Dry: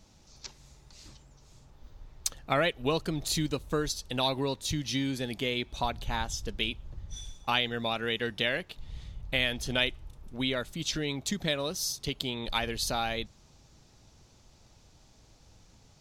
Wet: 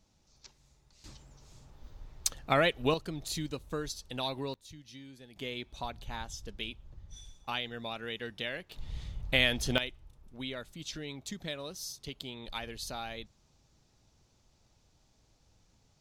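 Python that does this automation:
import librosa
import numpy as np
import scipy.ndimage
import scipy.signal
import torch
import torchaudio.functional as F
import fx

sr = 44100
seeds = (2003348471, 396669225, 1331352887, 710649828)

y = fx.gain(x, sr, db=fx.steps((0.0, -10.5), (1.04, 0.5), (2.94, -6.5), (4.54, -19.0), (5.36, -8.0), (8.72, 2.0), (9.78, -9.0)))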